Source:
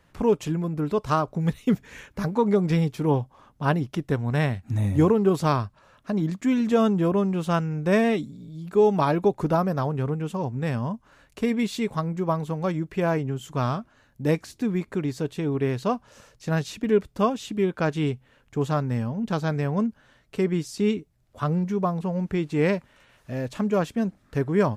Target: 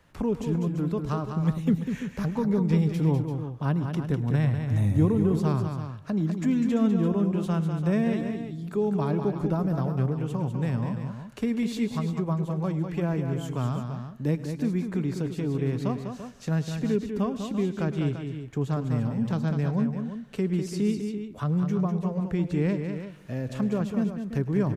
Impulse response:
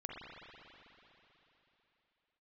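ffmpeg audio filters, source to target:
-filter_complex "[0:a]acrossover=split=280[link_01][link_02];[link_02]acompressor=threshold=-40dB:ratio=2[link_03];[link_01][link_03]amix=inputs=2:normalize=0,aecho=1:1:106|199|340:0.126|0.447|0.299,asplit=2[link_04][link_05];[1:a]atrim=start_sample=2205,afade=type=out:start_time=0.33:duration=0.01,atrim=end_sample=14994,adelay=129[link_06];[link_05][link_06]afir=irnorm=-1:irlink=0,volume=-19dB[link_07];[link_04][link_07]amix=inputs=2:normalize=0"

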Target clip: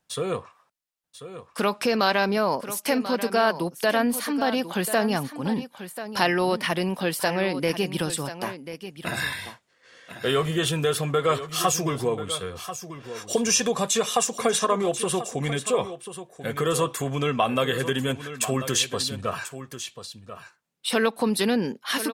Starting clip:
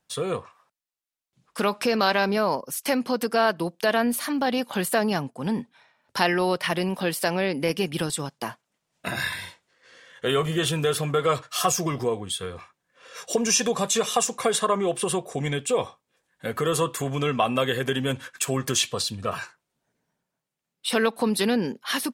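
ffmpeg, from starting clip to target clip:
ffmpeg -i in.wav -af "aecho=1:1:1039:0.251" out.wav

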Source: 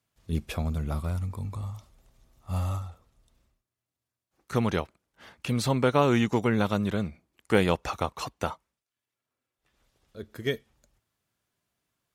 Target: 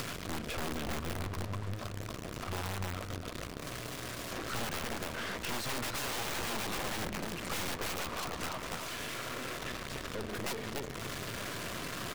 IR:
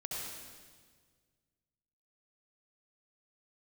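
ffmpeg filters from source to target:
-filter_complex "[0:a]aeval=exprs='val(0)+0.5*0.0376*sgn(val(0))':channel_layout=same,lowshelf=frequency=86:gain=-9.5,acrusher=bits=5:mix=0:aa=0.000001,highshelf=frequency=6700:gain=-12,bandreject=frequency=840:width=5.2,asplit=2[link_01][link_02];[link_02]adelay=289,lowpass=frequency=1900:poles=1,volume=-6dB,asplit=2[link_03][link_04];[link_04]adelay=289,lowpass=frequency=1900:poles=1,volume=0.2,asplit=2[link_05][link_06];[link_06]adelay=289,lowpass=frequency=1900:poles=1,volume=0.2[link_07];[link_01][link_03][link_05][link_07]amix=inputs=4:normalize=0,aeval=exprs='(mod(15*val(0)+1,2)-1)/15':channel_layout=same,acompressor=threshold=-45dB:ratio=2.5,aeval=exprs='0.0299*(cos(1*acos(clip(val(0)/0.0299,-1,1)))-cos(1*PI/2))+0.00944*(cos(4*acos(clip(val(0)/0.0299,-1,1)))-cos(4*PI/2))+0.00266*(cos(6*acos(clip(val(0)/0.0299,-1,1)))-cos(6*PI/2))':channel_layout=same,volume=3dB"

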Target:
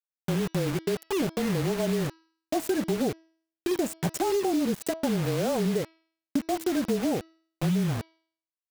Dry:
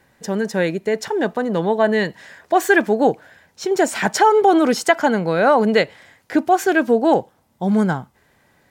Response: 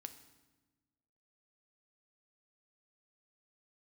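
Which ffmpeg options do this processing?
-af "firequalizer=gain_entry='entry(160,0);entry(1200,-20);entry(4800,-22);entry(7600,-5)':delay=0.05:min_phase=1,afreqshift=-26,acrusher=bits=4:mix=0:aa=0.000001,acompressor=threshold=-23dB:ratio=6,bandreject=frequency=324.8:width_type=h:width=4,bandreject=frequency=649.6:width_type=h:width=4,bandreject=frequency=974.4:width_type=h:width=4,bandreject=frequency=1299.2:width_type=h:width=4,bandreject=frequency=1624:width_type=h:width=4,bandreject=frequency=1948.8:width_type=h:width=4,bandreject=frequency=2273.6:width_type=h:width=4,bandreject=frequency=2598.4:width_type=h:width=4,bandreject=frequency=2923.2:width_type=h:width=4,bandreject=frequency=3248:width_type=h:width=4,bandreject=frequency=3572.8:width_type=h:width=4,bandreject=frequency=3897.6:width_type=h:width=4,bandreject=frequency=4222.4:width_type=h:width=4,bandreject=frequency=4547.2:width_type=h:width=4,bandreject=frequency=4872:width_type=h:width=4,bandreject=frequency=5196.8:width_type=h:width=4,bandreject=frequency=5521.6:width_type=h:width=4,bandreject=frequency=5846.4:width_type=h:width=4"

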